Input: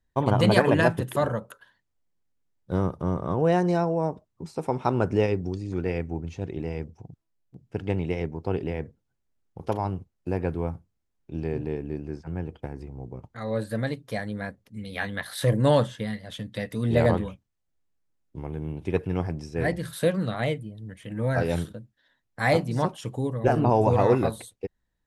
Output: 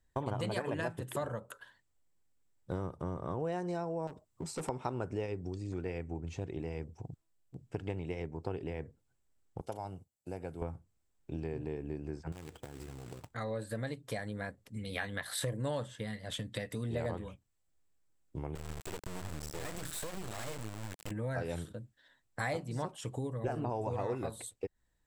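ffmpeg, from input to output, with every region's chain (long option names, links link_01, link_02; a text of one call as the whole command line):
ffmpeg -i in.wav -filter_complex "[0:a]asettb=1/sr,asplit=3[link_01][link_02][link_03];[link_01]atrim=end=4.074[link_04];[link_02]atrim=start=4.07:end=4.69,asetpts=PTS-STARTPTS,afade=type=in:duration=0.004:curve=qsin,afade=type=out:start_time=0.616:duration=0.004:curve=qsin,highshelf=frequency=4600:gain=5,volume=31.5dB,asoftclip=hard,volume=-31.5dB[link_05];[link_03]atrim=start=4.686[link_06];[link_04][link_05]acrossfade=duration=0.004:curve1=hsin:curve2=qsin[link_07];[link_07][link_06]acrossfade=duration=0.004:curve1=qsin:curve2=hsin,asettb=1/sr,asplit=3[link_08][link_09][link_10];[link_08]atrim=end=9.614[link_11];[link_09]atrim=start=9.61:end=10.62,asetpts=PTS-STARTPTS,afade=type=in:duration=0.004:curve=qsin,afade=type=out:start_time=1.006:duration=0.004:curve=qsin,highpass=frequency=580:poles=1,equalizer=frequency=1600:width=0.34:gain=-12.5,aecho=1:1:1.4:0.34,atrim=end_sample=44541[link_12];[link_10]atrim=start=10.616[link_13];[link_11][link_12]acrossfade=duration=0.004:curve1=hsin:curve2=qsin[link_14];[link_14][link_13]acrossfade=duration=0.004:curve1=qsin:curve2=hsin,asettb=1/sr,asplit=3[link_15][link_16][link_17];[link_15]atrim=end=12.324[link_18];[link_16]atrim=start=12.32:end=13.32,asetpts=PTS-STARTPTS,afade=type=in:duration=0.004:curve=qsin,afade=type=out:start_time=0.996:duration=0.004:curve=qsin,lowshelf=frequency=84:gain=-6,acompressor=threshold=-43dB:ratio=4:attack=3.2:release=140:knee=1:detection=peak,acrusher=bits=2:mode=log:mix=0:aa=0.000001[link_19];[link_17]atrim=start=13.316[link_20];[link_18][link_19]acrossfade=duration=0.004:curve1=hsin:curve2=qsin[link_21];[link_21][link_20]acrossfade=duration=0.004:curve1=qsin:curve2=hsin,asettb=1/sr,asplit=3[link_22][link_23][link_24];[link_22]atrim=end=18.554[link_25];[link_23]atrim=start=18.55:end=21.11,asetpts=PTS-STARTPTS,afade=type=in:duration=0.004:curve=qsin,afade=type=out:start_time=2.556:duration=0.004:curve=qsin,acompressor=threshold=-30dB:ratio=16:attack=3.2:release=140:knee=1:detection=peak,acrusher=bits=4:dc=4:mix=0:aa=0.000001[link_26];[link_24]atrim=start=21.106[link_27];[link_25][link_26]acrossfade=duration=0.004:curve1=hsin:curve2=qsin[link_28];[link_28][link_27]acrossfade=duration=0.004:curve1=qsin:curve2=hsin,equalizer=frequency=7800:width_type=o:width=0.21:gain=10,acompressor=threshold=-36dB:ratio=4,equalizer=frequency=200:width_type=o:width=0.62:gain=-4,volume=1dB" out.wav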